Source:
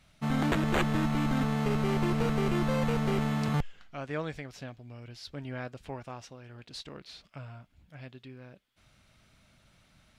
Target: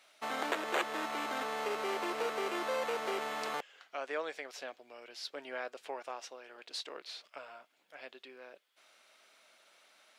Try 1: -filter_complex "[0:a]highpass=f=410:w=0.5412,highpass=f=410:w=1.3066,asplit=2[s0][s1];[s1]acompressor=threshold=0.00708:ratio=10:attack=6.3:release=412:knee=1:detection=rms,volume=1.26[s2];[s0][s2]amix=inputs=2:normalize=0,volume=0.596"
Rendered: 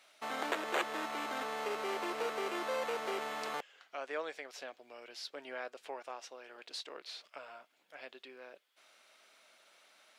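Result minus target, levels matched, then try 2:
compression: peak gain reduction +6 dB
-filter_complex "[0:a]highpass=f=410:w=0.5412,highpass=f=410:w=1.3066,asplit=2[s0][s1];[s1]acompressor=threshold=0.015:ratio=10:attack=6.3:release=412:knee=1:detection=rms,volume=1.26[s2];[s0][s2]amix=inputs=2:normalize=0,volume=0.596"

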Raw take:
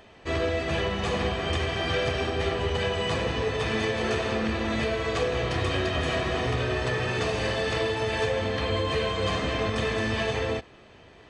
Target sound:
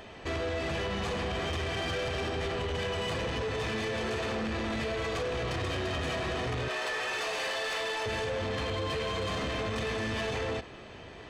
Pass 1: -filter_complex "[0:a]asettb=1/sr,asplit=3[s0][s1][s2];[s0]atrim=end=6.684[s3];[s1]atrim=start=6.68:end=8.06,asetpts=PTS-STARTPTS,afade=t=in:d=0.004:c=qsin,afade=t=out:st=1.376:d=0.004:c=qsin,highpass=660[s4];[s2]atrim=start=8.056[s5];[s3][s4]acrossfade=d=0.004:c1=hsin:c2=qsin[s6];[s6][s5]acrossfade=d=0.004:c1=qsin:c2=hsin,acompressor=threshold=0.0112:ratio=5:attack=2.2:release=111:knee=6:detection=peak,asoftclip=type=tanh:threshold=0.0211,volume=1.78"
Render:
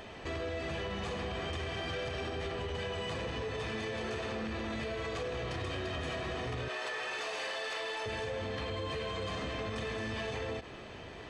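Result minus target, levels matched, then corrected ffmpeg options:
compression: peak gain reduction +7.5 dB
-filter_complex "[0:a]asettb=1/sr,asplit=3[s0][s1][s2];[s0]atrim=end=6.684[s3];[s1]atrim=start=6.68:end=8.06,asetpts=PTS-STARTPTS,afade=t=in:d=0.004:c=qsin,afade=t=out:st=1.376:d=0.004:c=qsin,highpass=660[s4];[s2]atrim=start=8.056[s5];[s3][s4]acrossfade=d=0.004:c1=hsin:c2=qsin[s6];[s6][s5]acrossfade=d=0.004:c1=qsin:c2=hsin,acompressor=threshold=0.0335:ratio=5:attack=2.2:release=111:knee=6:detection=peak,asoftclip=type=tanh:threshold=0.0211,volume=1.78"

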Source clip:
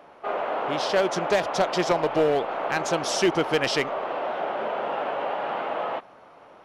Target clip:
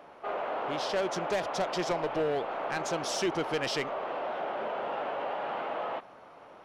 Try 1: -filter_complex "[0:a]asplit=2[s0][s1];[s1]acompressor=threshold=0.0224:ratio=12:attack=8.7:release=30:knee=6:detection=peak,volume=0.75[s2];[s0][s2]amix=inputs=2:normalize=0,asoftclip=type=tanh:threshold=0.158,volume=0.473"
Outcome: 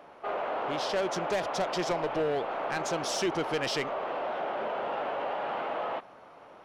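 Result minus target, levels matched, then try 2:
compression: peak gain reduction -7 dB
-filter_complex "[0:a]asplit=2[s0][s1];[s1]acompressor=threshold=0.00944:ratio=12:attack=8.7:release=30:knee=6:detection=peak,volume=0.75[s2];[s0][s2]amix=inputs=2:normalize=0,asoftclip=type=tanh:threshold=0.158,volume=0.473"

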